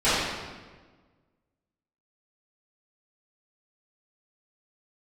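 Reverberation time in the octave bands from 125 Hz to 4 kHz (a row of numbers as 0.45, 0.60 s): 1.8, 1.7, 1.5, 1.3, 1.2, 1.1 s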